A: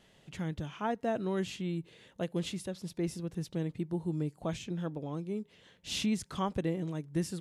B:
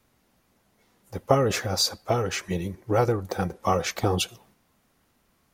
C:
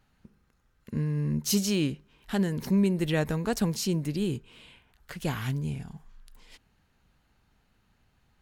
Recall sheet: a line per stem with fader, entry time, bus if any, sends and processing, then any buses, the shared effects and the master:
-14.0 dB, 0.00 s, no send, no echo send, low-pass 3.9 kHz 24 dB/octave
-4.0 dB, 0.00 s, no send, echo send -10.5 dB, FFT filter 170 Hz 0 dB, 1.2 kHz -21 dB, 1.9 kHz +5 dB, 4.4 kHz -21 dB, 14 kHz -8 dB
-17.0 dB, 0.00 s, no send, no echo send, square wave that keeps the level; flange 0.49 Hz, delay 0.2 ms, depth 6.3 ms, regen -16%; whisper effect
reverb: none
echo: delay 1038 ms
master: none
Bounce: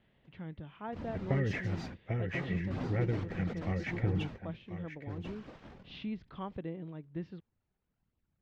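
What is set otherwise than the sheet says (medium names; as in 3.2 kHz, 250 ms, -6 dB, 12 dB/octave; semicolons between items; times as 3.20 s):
stem A -14.0 dB -> -7.5 dB; master: extra distance through air 180 m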